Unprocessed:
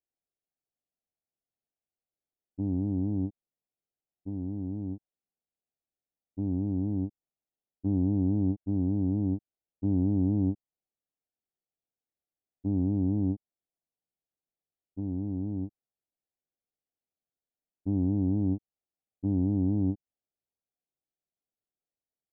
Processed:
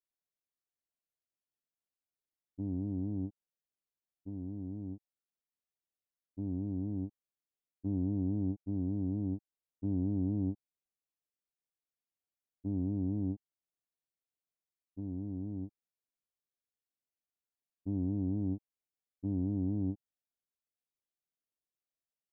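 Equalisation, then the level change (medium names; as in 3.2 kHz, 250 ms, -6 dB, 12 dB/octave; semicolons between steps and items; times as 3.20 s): band-stop 820 Hz, Q 12; -6.5 dB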